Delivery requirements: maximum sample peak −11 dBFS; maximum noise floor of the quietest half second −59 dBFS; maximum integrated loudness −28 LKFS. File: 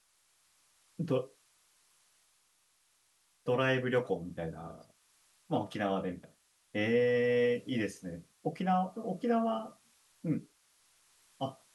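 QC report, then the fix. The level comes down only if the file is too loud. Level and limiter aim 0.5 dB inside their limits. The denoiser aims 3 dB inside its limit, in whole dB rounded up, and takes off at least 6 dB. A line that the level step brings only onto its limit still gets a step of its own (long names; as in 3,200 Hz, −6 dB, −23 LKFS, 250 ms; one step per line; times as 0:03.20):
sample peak −16.5 dBFS: in spec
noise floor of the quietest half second −72 dBFS: in spec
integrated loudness −33.5 LKFS: in spec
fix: no processing needed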